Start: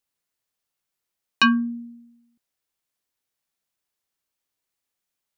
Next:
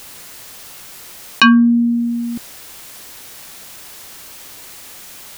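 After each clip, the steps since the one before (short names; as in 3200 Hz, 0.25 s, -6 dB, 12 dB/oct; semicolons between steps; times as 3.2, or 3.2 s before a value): fast leveller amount 70%; gain +6.5 dB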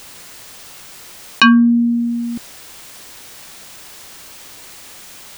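bell 13000 Hz -7 dB 0.42 oct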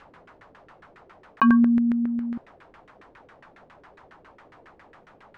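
LFO low-pass saw down 7.3 Hz 360–1800 Hz; gain -7.5 dB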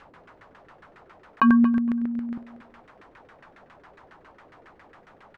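feedback echo 0.235 s, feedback 15%, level -15 dB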